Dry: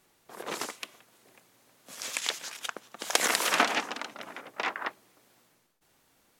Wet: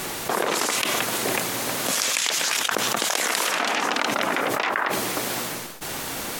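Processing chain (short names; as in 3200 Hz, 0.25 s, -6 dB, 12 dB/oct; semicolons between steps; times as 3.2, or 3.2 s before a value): low shelf 130 Hz -3.5 dB; fast leveller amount 100%; gain -3.5 dB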